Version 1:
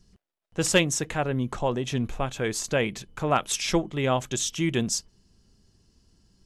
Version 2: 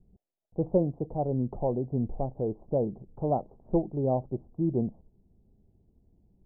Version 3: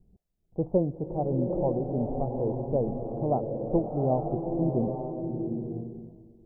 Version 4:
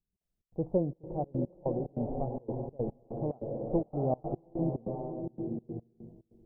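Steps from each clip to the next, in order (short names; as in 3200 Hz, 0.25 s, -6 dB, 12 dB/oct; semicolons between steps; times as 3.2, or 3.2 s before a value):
steep low-pass 810 Hz 48 dB/oct; gain -1.5 dB
bloom reverb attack 0.88 s, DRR 2.5 dB
step gate "..xx.xxxx.xx.x" 145 bpm -24 dB; gain -4 dB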